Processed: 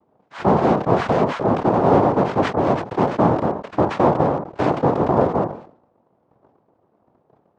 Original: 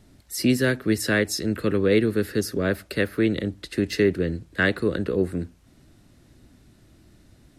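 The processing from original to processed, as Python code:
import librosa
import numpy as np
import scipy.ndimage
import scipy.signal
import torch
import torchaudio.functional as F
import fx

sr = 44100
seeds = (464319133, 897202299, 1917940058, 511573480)

y = fx.rattle_buzz(x, sr, strikes_db=-28.0, level_db=-22.0)
y = fx.leveller(y, sr, passes=3)
y = fx.noise_vocoder(y, sr, seeds[0], bands=2)
y = scipy.signal.sosfilt(scipy.signal.butter(2, 1100.0, 'lowpass', fs=sr, output='sos'), y)
y = fx.sustainer(y, sr, db_per_s=110.0)
y = F.gain(torch.from_numpy(y), -1.0).numpy()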